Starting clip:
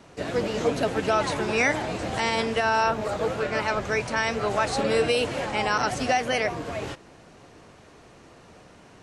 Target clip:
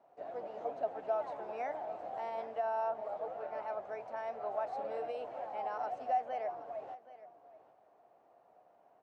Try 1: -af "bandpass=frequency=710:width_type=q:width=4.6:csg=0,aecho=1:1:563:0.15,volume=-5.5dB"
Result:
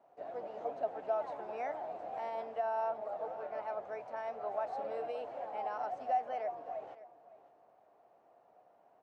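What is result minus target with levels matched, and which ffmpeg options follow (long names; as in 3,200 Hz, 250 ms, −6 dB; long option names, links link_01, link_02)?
echo 212 ms early
-af "bandpass=frequency=710:width_type=q:width=4.6:csg=0,aecho=1:1:775:0.15,volume=-5.5dB"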